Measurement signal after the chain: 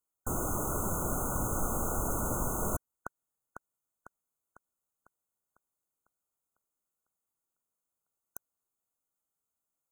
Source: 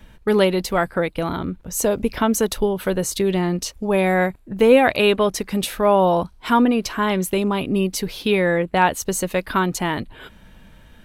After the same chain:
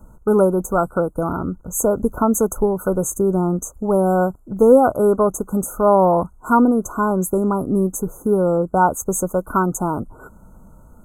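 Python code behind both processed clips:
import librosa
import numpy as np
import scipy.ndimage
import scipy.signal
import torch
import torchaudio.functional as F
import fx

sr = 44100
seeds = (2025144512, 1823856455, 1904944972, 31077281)

y = fx.brickwall_bandstop(x, sr, low_hz=1500.0, high_hz=6200.0)
y = y * librosa.db_to_amplitude(2.0)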